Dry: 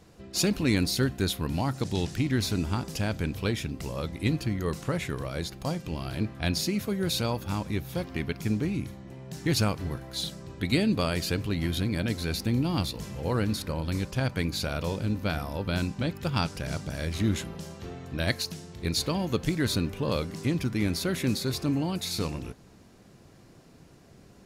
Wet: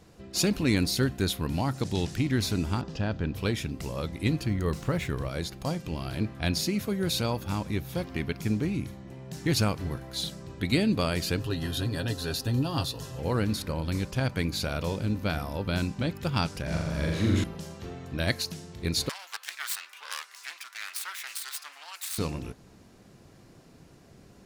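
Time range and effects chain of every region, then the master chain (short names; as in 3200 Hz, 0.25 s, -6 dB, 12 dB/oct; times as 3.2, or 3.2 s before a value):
2.81–3.35 air absorption 180 m + notch 2200 Hz, Q 6.2
4.5–5.29 low shelf 71 Hz +9.5 dB + decimation joined by straight lines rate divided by 2×
11.39–13.19 Butterworth band-stop 2200 Hz, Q 4.3 + bell 200 Hz -8.5 dB 0.81 oct + comb 7.4 ms, depth 56%
16.62–17.44 high shelf 5400 Hz -9 dB + flutter echo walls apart 7.3 m, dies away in 1.1 s
19.09–22.18 self-modulated delay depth 0.41 ms + HPF 1100 Hz 24 dB/oct
whole clip: dry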